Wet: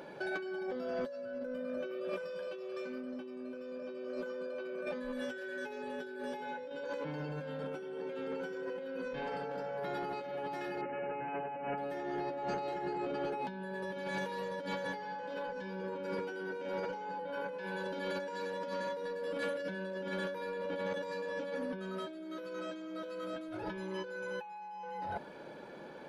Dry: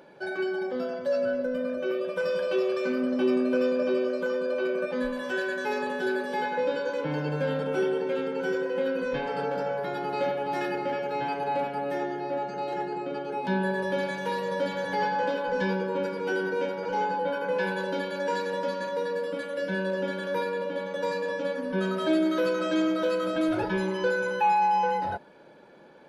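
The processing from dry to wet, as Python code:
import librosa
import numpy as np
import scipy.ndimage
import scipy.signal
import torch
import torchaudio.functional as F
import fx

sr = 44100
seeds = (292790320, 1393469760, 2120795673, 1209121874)

y = fx.comb(x, sr, ms=7.4, depth=0.81, at=(5.12, 6.84))
y = fx.over_compress(y, sr, threshold_db=-36.0, ratio=-1.0)
y = 10.0 ** (-24.5 / 20.0) * np.tanh(y / 10.0 ** (-24.5 / 20.0))
y = fx.brickwall_lowpass(y, sr, high_hz=3000.0, at=(10.81, 11.78))
y = y * 10.0 ** (-3.5 / 20.0)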